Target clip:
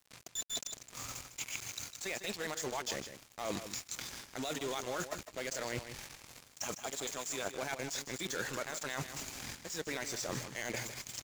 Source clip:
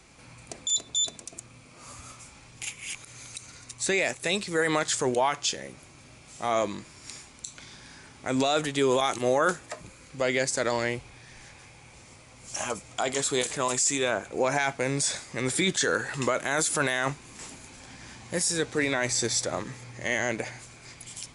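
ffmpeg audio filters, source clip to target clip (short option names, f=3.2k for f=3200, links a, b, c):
-af "aemphasis=mode=production:type=cd,areverse,acompressor=threshold=-36dB:ratio=12,areverse,aresample=16000,acrusher=bits=3:mode=log:mix=0:aa=0.000001,aresample=44100,atempo=1.9,acrusher=bits=6:mix=0:aa=0.5,aecho=1:1:154:0.299,volume=1.5dB"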